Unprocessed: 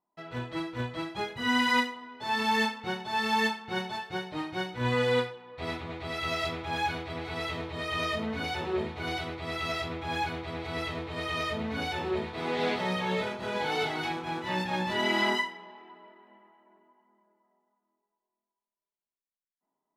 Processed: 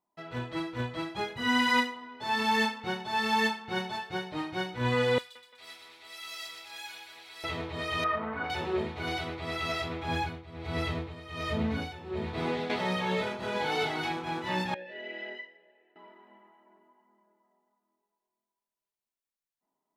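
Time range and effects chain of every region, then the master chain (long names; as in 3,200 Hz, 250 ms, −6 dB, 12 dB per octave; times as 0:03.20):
0:05.18–0:07.44: first difference + echo with a time of its own for lows and highs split 3,000 Hz, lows 172 ms, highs 123 ms, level −6 dB
0:08.04–0:08.50: mu-law and A-law mismatch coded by A + low-pass with resonance 1,300 Hz, resonance Q 1.7 + tilt shelving filter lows −5 dB, about 660 Hz
0:10.08–0:12.70: low-shelf EQ 230 Hz +9 dB + amplitude tremolo 1.3 Hz, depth 82%
0:14.74–0:15.96: formant filter e + high-frequency loss of the air 87 metres
whole clip: no processing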